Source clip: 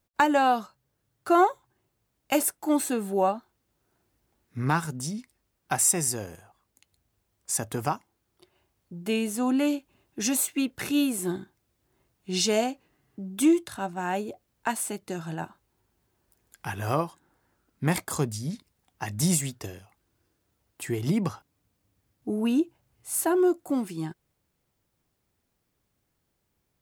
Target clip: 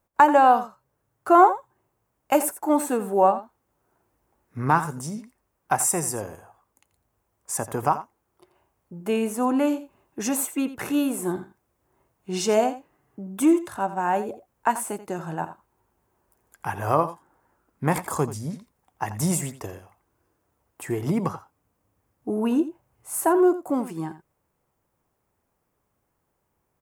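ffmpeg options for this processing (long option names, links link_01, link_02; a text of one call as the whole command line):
ffmpeg -i in.wav -af "equalizer=frequency=500:width_type=o:width=1:gain=4,equalizer=frequency=1000:width_type=o:width=1:gain=8,equalizer=frequency=4000:width_type=o:width=1:gain=-8,aecho=1:1:85:0.2" out.wav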